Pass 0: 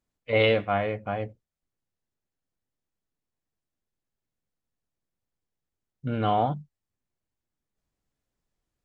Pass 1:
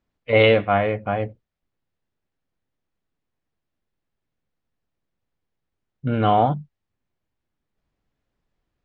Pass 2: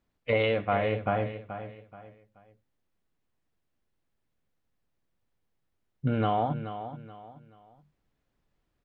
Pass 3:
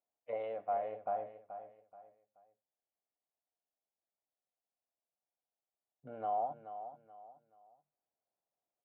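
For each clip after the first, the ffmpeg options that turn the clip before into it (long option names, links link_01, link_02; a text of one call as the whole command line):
ffmpeg -i in.wav -af "lowpass=3600,volume=6.5dB" out.wav
ffmpeg -i in.wav -af "acompressor=threshold=-23dB:ratio=6,aecho=1:1:429|858|1287:0.282|0.0902|0.0289" out.wav
ffmpeg -i in.wav -af "bandpass=frequency=700:width_type=q:width=3.7:csg=0,volume=-5dB" out.wav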